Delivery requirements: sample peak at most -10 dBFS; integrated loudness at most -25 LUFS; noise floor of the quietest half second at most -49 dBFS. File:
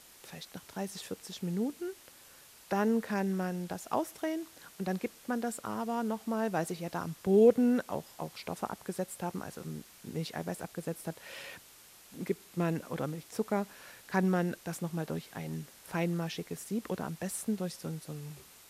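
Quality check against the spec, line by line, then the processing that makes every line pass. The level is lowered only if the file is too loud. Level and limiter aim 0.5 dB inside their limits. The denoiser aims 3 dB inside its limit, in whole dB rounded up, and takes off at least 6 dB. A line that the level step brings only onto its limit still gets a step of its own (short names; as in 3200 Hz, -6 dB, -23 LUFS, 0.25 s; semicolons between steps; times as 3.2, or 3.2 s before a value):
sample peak -13.0 dBFS: OK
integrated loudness -34.5 LUFS: OK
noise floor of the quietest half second -56 dBFS: OK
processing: none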